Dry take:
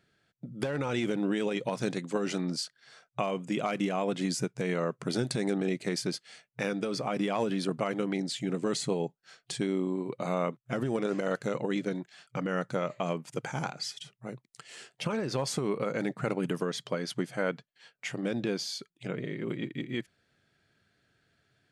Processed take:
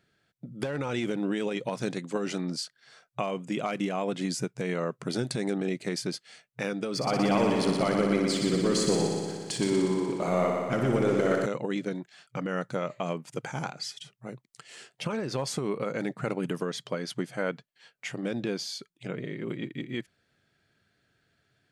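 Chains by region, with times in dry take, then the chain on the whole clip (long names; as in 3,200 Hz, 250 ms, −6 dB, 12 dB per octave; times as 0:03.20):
0:06.95–0:11.46: notch filter 3,700 Hz, Q 10 + leveller curve on the samples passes 1 + echo machine with several playback heads 60 ms, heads first and second, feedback 71%, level −7.5 dB
whole clip: no processing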